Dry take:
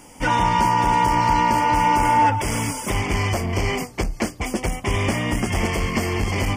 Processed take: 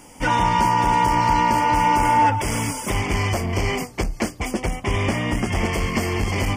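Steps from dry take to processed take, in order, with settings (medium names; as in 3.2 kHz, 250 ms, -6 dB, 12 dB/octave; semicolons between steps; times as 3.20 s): 4.51–5.73 s: treble shelf 7.4 kHz -7 dB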